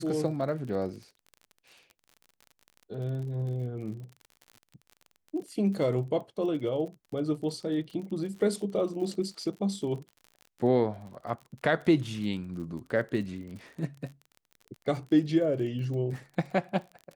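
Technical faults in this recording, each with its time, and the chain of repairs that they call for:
crackle 41 per s -39 dBFS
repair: de-click

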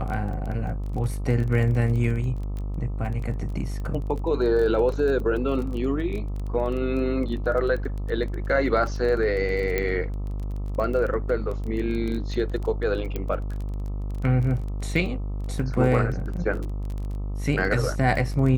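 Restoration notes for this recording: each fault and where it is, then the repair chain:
buzz 50 Hz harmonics 26 -29 dBFS
crackle 20 per s -30 dBFS
9.78 s: pop -11 dBFS
13.16 s: pop -16 dBFS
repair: de-click; de-hum 50 Hz, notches 26

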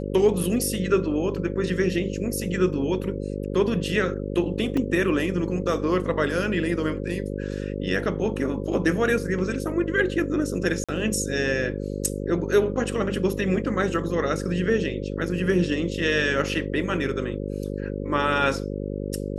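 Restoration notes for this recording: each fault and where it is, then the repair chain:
buzz 50 Hz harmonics 11 -30 dBFS
4.77 s: dropout 3.6 ms
10.84–10.89 s: dropout 46 ms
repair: de-hum 50 Hz, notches 11; interpolate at 4.77 s, 3.6 ms; interpolate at 10.84 s, 46 ms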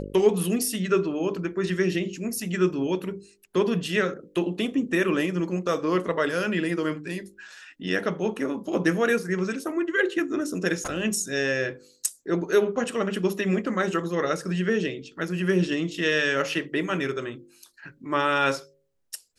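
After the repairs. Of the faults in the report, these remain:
nothing left

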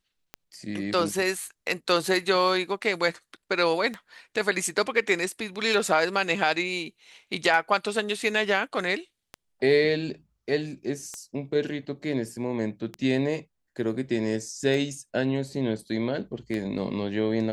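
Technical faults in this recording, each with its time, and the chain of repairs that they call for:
tick 33 1/3 rpm -19 dBFS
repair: de-click

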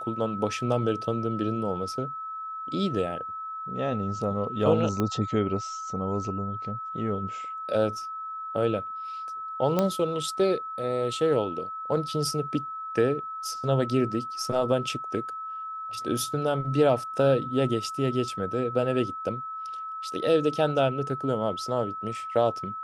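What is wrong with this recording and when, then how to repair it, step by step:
whine 1.3 kHz -33 dBFS
5.00 s: pop -14 dBFS
9.79 s: pop -11 dBFS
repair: de-click; band-stop 1.3 kHz, Q 30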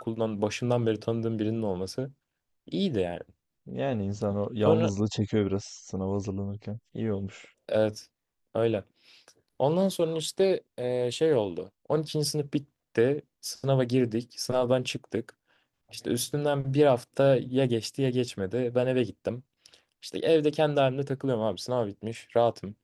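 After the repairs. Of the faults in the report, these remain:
5.00 s: pop
9.79 s: pop

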